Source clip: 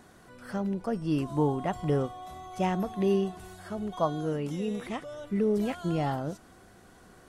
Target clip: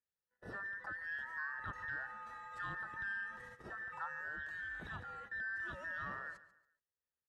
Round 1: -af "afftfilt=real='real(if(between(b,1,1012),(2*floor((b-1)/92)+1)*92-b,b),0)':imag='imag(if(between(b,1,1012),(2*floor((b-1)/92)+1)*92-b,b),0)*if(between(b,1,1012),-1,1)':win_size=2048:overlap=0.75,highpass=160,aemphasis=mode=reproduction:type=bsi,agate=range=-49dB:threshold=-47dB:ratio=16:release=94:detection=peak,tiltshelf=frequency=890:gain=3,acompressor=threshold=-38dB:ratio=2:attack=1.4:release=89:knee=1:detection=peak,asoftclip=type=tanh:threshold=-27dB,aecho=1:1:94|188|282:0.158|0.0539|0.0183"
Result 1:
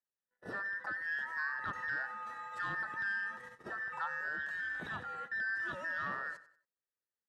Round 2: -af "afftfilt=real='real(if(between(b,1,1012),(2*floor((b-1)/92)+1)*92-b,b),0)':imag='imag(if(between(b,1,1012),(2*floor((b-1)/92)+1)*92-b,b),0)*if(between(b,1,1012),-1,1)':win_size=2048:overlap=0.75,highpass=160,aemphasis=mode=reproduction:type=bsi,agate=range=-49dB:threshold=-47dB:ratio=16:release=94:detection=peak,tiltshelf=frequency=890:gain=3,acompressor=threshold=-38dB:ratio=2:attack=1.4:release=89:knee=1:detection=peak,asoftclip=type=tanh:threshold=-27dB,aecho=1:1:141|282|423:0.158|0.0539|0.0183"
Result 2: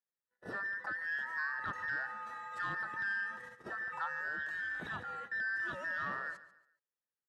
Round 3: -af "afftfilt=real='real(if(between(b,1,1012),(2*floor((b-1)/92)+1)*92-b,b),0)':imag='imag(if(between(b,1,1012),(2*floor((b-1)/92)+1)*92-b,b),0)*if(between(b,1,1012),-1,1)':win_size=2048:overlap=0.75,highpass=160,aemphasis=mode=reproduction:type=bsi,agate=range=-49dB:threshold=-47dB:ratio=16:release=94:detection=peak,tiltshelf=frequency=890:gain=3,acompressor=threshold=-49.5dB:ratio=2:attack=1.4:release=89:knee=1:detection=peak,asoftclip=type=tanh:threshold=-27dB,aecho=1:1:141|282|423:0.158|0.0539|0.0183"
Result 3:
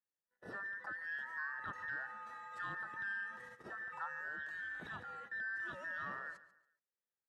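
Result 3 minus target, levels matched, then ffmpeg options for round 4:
125 Hz band −5.0 dB
-af "afftfilt=real='real(if(between(b,1,1012),(2*floor((b-1)/92)+1)*92-b,b),0)':imag='imag(if(between(b,1,1012),(2*floor((b-1)/92)+1)*92-b,b),0)*if(between(b,1,1012),-1,1)':win_size=2048:overlap=0.75,highpass=60,aemphasis=mode=reproduction:type=bsi,agate=range=-49dB:threshold=-47dB:ratio=16:release=94:detection=peak,tiltshelf=frequency=890:gain=3,acompressor=threshold=-49.5dB:ratio=2:attack=1.4:release=89:knee=1:detection=peak,asoftclip=type=tanh:threshold=-27dB,aecho=1:1:141|282|423:0.158|0.0539|0.0183"

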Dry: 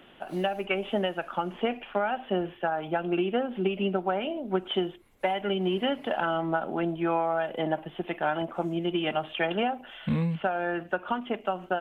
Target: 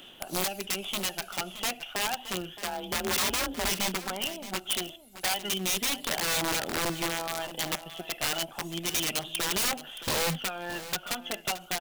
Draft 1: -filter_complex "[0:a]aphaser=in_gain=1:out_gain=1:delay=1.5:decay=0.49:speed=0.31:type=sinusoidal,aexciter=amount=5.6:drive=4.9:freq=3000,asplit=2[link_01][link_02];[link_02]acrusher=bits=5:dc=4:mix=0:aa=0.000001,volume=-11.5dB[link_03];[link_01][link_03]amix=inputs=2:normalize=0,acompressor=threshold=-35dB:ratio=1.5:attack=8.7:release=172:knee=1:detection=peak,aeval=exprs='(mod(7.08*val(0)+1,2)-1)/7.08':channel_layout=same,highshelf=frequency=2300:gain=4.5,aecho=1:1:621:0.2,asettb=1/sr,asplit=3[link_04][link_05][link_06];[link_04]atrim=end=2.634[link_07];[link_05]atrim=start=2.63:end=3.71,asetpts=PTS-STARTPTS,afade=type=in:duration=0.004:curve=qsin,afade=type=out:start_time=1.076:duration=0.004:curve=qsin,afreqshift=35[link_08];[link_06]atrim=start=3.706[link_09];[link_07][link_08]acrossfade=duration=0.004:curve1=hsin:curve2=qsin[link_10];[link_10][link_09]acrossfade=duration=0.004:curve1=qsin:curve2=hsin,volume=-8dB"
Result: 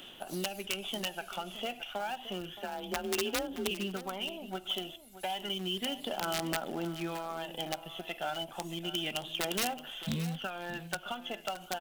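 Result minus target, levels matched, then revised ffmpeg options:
downward compressor: peak gain reduction +8 dB
-filter_complex "[0:a]aphaser=in_gain=1:out_gain=1:delay=1.5:decay=0.49:speed=0.31:type=sinusoidal,aexciter=amount=5.6:drive=4.9:freq=3000,asplit=2[link_01][link_02];[link_02]acrusher=bits=5:dc=4:mix=0:aa=0.000001,volume=-11.5dB[link_03];[link_01][link_03]amix=inputs=2:normalize=0,aeval=exprs='(mod(7.08*val(0)+1,2)-1)/7.08':channel_layout=same,highshelf=frequency=2300:gain=4.5,aecho=1:1:621:0.2,asettb=1/sr,asplit=3[link_04][link_05][link_06];[link_04]atrim=end=2.634[link_07];[link_05]atrim=start=2.63:end=3.71,asetpts=PTS-STARTPTS,afade=type=in:duration=0.004:curve=qsin,afade=type=out:start_time=1.076:duration=0.004:curve=qsin,afreqshift=35[link_08];[link_06]atrim=start=3.706[link_09];[link_07][link_08]acrossfade=duration=0.004:curve1=hsin:curve2=qsin[link_10];[link_10][link_09]acrossfade=duration=0.004:curve1=qsin:curve2=hsin,volume=-8dB"

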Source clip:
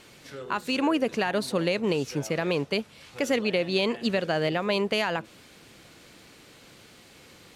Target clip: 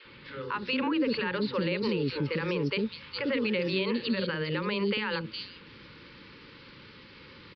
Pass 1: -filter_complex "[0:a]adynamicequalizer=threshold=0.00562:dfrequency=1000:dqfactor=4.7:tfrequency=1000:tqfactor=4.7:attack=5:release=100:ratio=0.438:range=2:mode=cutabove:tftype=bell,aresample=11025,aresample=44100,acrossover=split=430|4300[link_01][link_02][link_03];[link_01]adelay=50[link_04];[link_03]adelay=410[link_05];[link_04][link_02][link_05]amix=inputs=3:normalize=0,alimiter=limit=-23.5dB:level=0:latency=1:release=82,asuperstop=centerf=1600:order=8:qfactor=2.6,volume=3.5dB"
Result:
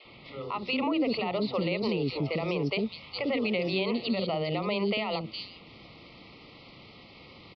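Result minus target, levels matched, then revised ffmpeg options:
2,000 Hz band −2.5 dB
-filter_complex "[0:a]adynamicequalizer=threshold=0.00562:dfrequency=1000:dqfactor=4.7:tfrequency=1000:tqfactor=4.7:attack=5:release=100:ratio=0.438:range=2:mode=cutabove:tftype=bell,aresample=11025,aresample=44100,acrossover=split=430|4300[link_01][link_02][link_03];[link_01]adelay=50[link_04];[link_03]adelay=410[link_05];[link_04][link_02][link_05]amix=inputs=3:normalize=0,alimiter=limit=-23.5dB:level=0:latency=1:release=82,asuperstop=centerf=700:order=8:qfactor=2.6,volume=3.5dB"

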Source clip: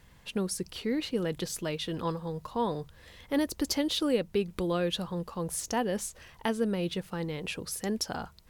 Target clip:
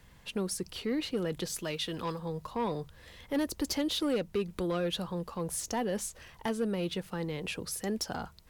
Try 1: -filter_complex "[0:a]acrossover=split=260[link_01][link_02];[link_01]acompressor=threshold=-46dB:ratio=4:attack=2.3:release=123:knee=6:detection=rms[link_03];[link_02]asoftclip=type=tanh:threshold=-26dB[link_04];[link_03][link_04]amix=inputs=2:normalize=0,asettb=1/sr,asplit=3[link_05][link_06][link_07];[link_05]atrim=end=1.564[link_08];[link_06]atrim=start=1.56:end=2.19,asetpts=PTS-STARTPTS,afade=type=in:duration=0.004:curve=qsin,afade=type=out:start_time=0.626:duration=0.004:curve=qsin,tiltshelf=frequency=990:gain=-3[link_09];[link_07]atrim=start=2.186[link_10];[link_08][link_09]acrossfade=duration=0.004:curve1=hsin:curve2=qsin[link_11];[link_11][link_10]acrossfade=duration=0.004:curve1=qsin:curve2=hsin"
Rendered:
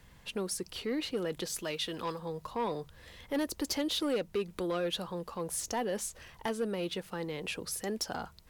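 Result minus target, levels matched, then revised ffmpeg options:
downward compressor: peak gain reduction +9 dB
-filter_complex "[0:a]acrossover=split=260[link_01][link_02];[link_01]acompressor=threshold=-34dB:ratio=4:attack=2.3:release=123:knee=6:detection=rms[link_03];[link_02]asoftclip=type=tanh:threshold=-26dB[link_04];[link_03][link_04]amix=inputs=2:normalize=0,asettb=1/sr,asplit=3[link_05][link_06][link_07];[link_05]atrim=end=1.564[link_08];[link_06]atrim=start=1.56:end=2.19,asetpts=PTS-STARTPTS,afade=type=in:duration=0.004:curve=qsin,afade=type=out:start_time=0.626:duration=0.004:curve=qsin,tiltshelf=frequency=990:gain=-3[link_09];[link_07]atrim=start=2.186[link_10];[link_08][link_09]acrossfade=duration=0.004:curve1=hsin:curve2=qsin[link_11];[link_11][link_10]acrossfade=duration=0.004:curve1=qsin:curve2=hsin"

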